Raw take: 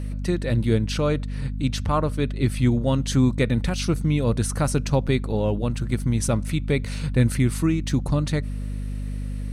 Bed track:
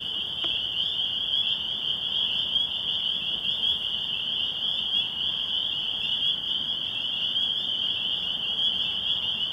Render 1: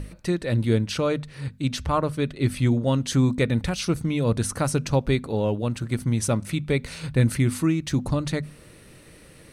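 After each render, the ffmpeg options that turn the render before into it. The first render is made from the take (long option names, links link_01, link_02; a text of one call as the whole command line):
ffmpeg -i in.wav -af "bandreject=frequency=50:width_type=h:width=6,bandreject=frequency=100:width_type=h:width=6,bandreject=frequency=150:width_type=h:width=6,bandreject=frequency=200:width_type=h:width=6,bandreject=frequency=250:width_type=h:width=6" out.wav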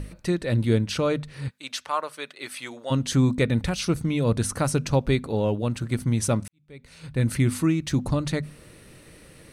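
ffmpeg -i in.wav -filter_complex "[0:a]asplit=3[link_01][link_02][link_03];[link_01]afade=type=out:start_time=1.49:duration=0.02[link_04];[link_02]highpass=790,afade=type=in:start_time=1.49:duration=0.02,afade=type=out:start_time=2.9:duration=0.02[link_05];[link_03]afade=type=in:start_time=2.9:duration=0.02[link_06];[link_04][link_05][link_06]amix=inputs=3:normalize=0,asplit=2[link_07][link_08];[link_07]atrim=end=6.48,asetpts=PTS-STARTPTS,afade=type=out:start_time=6.476:duration=0.004:curve=hsin[link_09];[link_08]atrim=start=6.48,asetpts=PTS-STARTPTS,afade=type=in:duration=0.91:curve=qua[link_10];[link_09][link_10]concat=n=2:v=0:a=1" out.wav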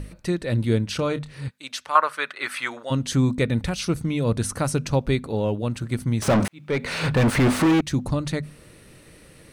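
ffmpeg -i in.wav -filter_complex "[0:a]asettb=1/sr,asplit=3[link_01][link_02][link_03];[link_01]atrim=end=0.964[link_04];[link_02]atrim=start=0.96:end=1.38,asetpts=PTS-STARTPTS,afade=type=in:duration=0.004:curve=qsin,afade=type=out:start_time=0.416:duration=0.004:curve=qsin,asplit=2[link_05][link_06];[link_06]adelay=28,volume=-12dB[link_07];[link_05][link_07]amix=inputs=2:normalize=0,atrim=end_sample=18522[link_08];[link_03]atrim=start=1.376[link_09];[link_04][link_08]acrossfade=duration=0.004:curve1=hsin:curve2=qsin[link_10];[link_10][link_09]acrossfade=duration=0.004:curve1=qsin:curve2=hsin,asettb=1/sr,asplit=3[link_11][link_12][link_13];[link_11]atrim=end=1.954[link_14];[link_12]atrim=start=1.95:end=2.83,asetpts=PTS-STARTPTS,afade=type=in:duration=0.004:curve=qsin,afade=type=out:start_time=0.876:duration=0.004:curve=qsin,equalizer=frequency=1400:width_type=o:width=1.7:gain=15[link_15];[link_13]atrim=start=2.826[link_16];[link_14][link_15]acrossfade=duration=0.004:curve1=hsin:curve2=qsin[link_17];[link_17][link_16]acrossfade=duration=0.004:curve1=qsin:curve2=hsin,asettb=1/sr,asplit=3[link_18][link_19][link_20];[link_18]atrim=end=6.224[link_21];[link_19]atrim=start=6.22:end=7.81,asetpts=PTS-STARTPTS,afade=type=in:duration=0.004:curve=qsin,afade=type=out:start_time=1.586:duration=0.004:curve=qsin,asplit=2[link_22][link_23];[link_23]highpass=frequency=720:poles=1,volume=39dB,asoftclip=type=tanh:threshold=-10.5dB[link_24];[link_22][link_24]amix=inputs=2:normalize=0,lowpass=frequency=1300:poles=1,volume=-6dB[link_25];[link_20]atrim=start=7.806[link_26];[link_21][link_25]acrossfade=duration=0.004:curve1=hsin:curve2=qsin[link_27];[link_27][link_26]acrossfade=duration=0.004:curve1=qsin:curve2=hsin" out.wav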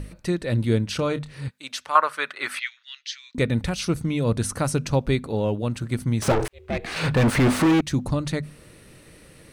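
ffmpeg -i in.wav -filter_complex "[0:a]asettb=1/sr,asplit=3[link_01][link_02][link_03];[link_01]atrim=end=2.594[link_04];[link_02]atrim=start=2.59:end=3.35,asetpts=PTS-STARTPTS,afade=type=in:duration=0.004:curve=qsin,afade=type=out:start_time=0.756:duration=0.004:curve=qsin,asuperpass=centerf=3300:order=8:qfactor=0.86[link_05];[link_03]atrim=start=3.346[link_06];[link_04][link_05]acrossfade=duration=0.004:curve1=hsin:curve2=qsin[link_07];[link_07][link_06]acrossfade=duration=0.004:curve1=qsin:curve2=hsin,asettb=1/sr,asplit=3[link_08][link_09][link_10];[link_08]atrim=end=6.324[link_11];[link_09]atrim=start=6.32:end=6.96,asetpts=PTS-STARTPTS,afade=type=in:duration=0.004:curve=qsin,afade=type=out:start_time=0.636:duration=0.004:curve=qsin,aeval=exprs='val(0)*sin(2*PI*230*n/s)':channel_layout=same[link_12];[link_10]atrim=start=6.956[link_13];[link_11][link_12]acrossfade=duration=0.004:curve1=hsin:curve2=qsin[link_14];[link_14][link_13]acrossfade=duration=0.004:curve1=qsin:curve2=hsin" out.wav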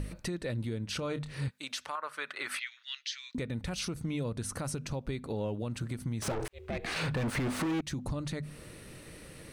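ffmpeg -i in.wav -af "acompressor=threshold=-29dB:ratio=10,alimiter=level_in=1.5dB:limit=-24dB:level=0:latency=1:release=82,volume=-1.5dB" out.wav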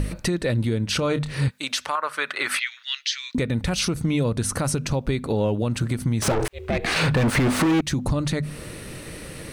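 ffmpeg -i in.wav -af "volume=12dB" out.wav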